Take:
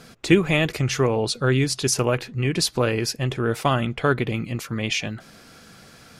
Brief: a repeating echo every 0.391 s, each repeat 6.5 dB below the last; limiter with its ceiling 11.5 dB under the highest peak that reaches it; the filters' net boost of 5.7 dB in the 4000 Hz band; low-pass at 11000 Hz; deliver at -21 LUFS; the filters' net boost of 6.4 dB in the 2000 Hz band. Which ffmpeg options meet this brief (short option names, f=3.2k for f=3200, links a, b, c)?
-af "lowpass=11k,equalizer=f=2k:t=o:g=6.5,equalizer=f=4k:t=o:g=5.5,alimiter=limit=-11.5dB:level=0:latency=1,aecho=1:1:391|782|1173|1564|1955|2346:0.473|0.222|0.105|0.0491|0.0231|0.0109,volume=1dB"